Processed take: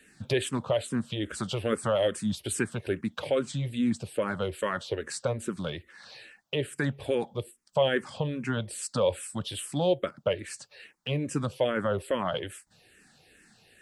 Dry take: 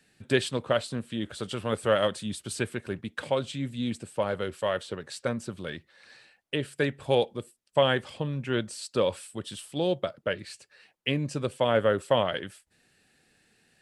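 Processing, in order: dynamic bell 4.1 kHz, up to -4 dB, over -44 dBFS, Q 0.99; in parallel at +1 dB: compression, threshold -37 dBFS, peak gain reduction 18.5 dB; on the sum: peak limiter -15 dBFS, peak gain reduction 6.5 dB; barber-pole phaser -2.4 Hz; trim +2.5 dB

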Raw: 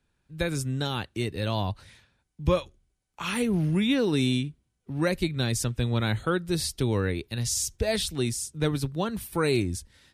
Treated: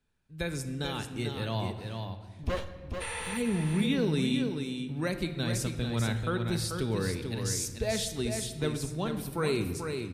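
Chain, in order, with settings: 2.43–3.27 s: comb filter that takes the minimum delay 2.2 ms; 3.04–3.32 s: spectral replace 450–12000 Hz after; delay 439 ms -6 dB; on a send at -8 dB: reverberation RT60 1.6 s, pre-delay 5 ms; on the sum: trim -5.5 dB

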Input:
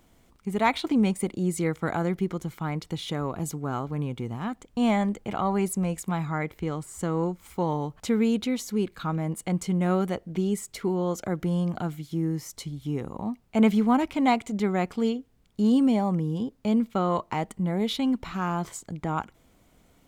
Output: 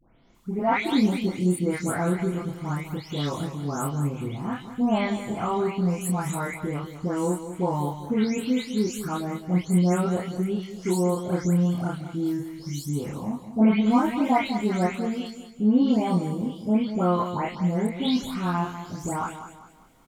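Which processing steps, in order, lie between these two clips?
delay that grows with frequency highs late, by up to 347 ms; doubling 28 ms -3 dB; on a send: feedback delay 198 ms, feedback 37%, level -11 dB

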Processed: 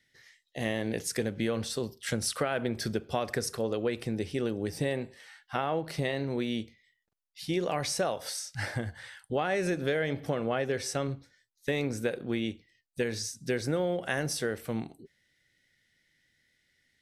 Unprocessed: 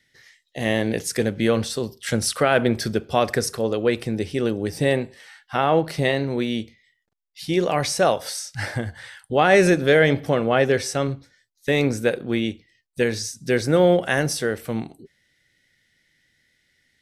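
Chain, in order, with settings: compression 10:1, threshold -19 dBFS, peak gain reduction 9.5 dB; trim -6 dB

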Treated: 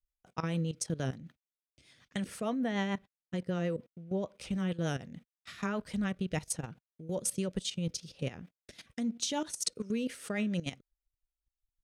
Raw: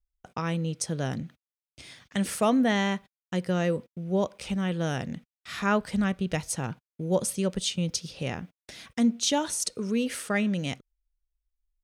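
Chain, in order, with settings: 2.20–4.34 s: treble shelf 4.1 kHz -6 dB; level held to a coarse grid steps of 15 dB; rotary cabinet horn 6.7 Hz

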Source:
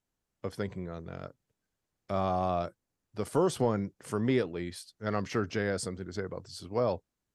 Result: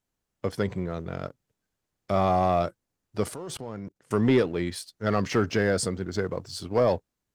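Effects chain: 3.34–4.13 s: level held to a coarse grid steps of 22 dB; waveshaping leveller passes 1; trim +4 dB

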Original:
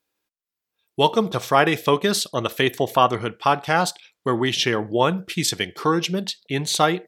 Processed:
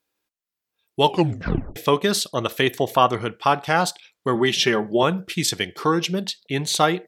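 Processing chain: 1.04 s: tape stop 0.72 s; 4.35–5.03 s: comb 5.1 ms, depth 65%

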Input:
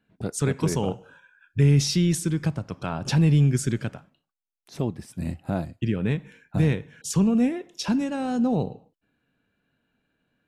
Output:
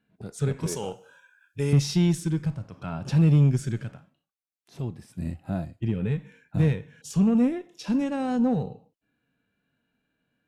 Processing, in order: harmonic-percussive split percussive -11 dB; 0.66–1.73 s: tone controls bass -12 dB, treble +11 dB; Chebyshev shaper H 8 -30 dB, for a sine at -10 dBFS

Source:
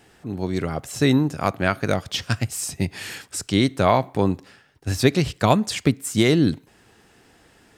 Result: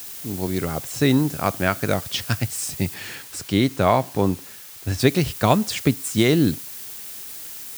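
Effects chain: added noise blue -36 dBFS; 2.94–5.00 s: treble shelf 5.2 kHz -6 dB

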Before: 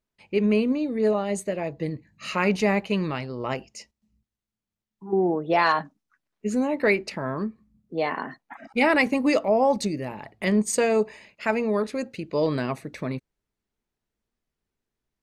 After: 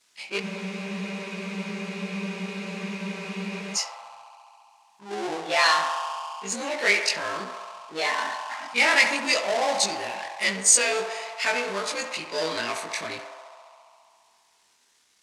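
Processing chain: short-time spectra conjugated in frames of 50 ms; band-passed feedback delay 68 ms, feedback 82%, band-pass 900 Hz, level -8 dB; power-law waveshaper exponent 0.7; frequency weighting ITU-R 468; spectral freeze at 0.44 s, 3.32 s; trim -1.5 dB

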